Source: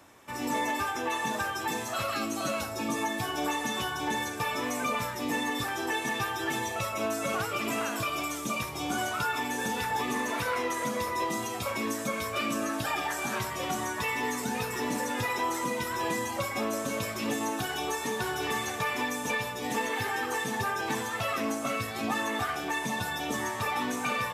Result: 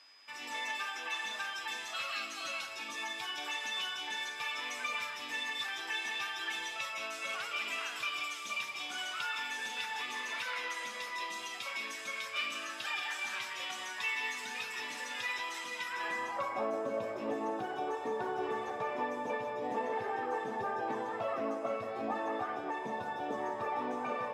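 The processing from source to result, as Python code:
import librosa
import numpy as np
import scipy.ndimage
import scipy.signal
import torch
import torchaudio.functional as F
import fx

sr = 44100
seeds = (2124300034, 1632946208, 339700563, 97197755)

y = x + 10.0 ** (-8.5 / 20.0) * np.pad(x, (int(179 * sr / 1000.0), 0))[:len(x)]
y = y + 10.0 ** (-53.0 / 20.0) * np.sin(2.0 * np.pi * 5000.0 * np.arange(len(y)) / sr)
y = fx.filter_sweep_bandpass(y, sr, from_hz=2900.0, to_hz=580.0, start_s=15.76, end_s=16.77, q=1.3)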